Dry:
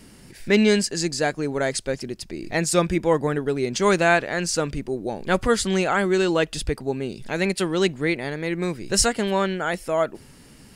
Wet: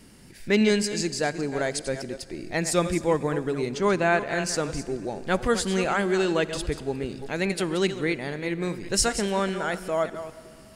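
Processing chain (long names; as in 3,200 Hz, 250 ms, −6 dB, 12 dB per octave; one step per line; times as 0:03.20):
delay that plays each chunk backwards 202 ms, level −11 dB
0:03.75–0:04.27: high-shelf EQ 3,400 Hz −9.5 dB
convolution reverb RT60 2.9 s, pre-delay 43 ms, DRR 17 dB
level −3.5 dB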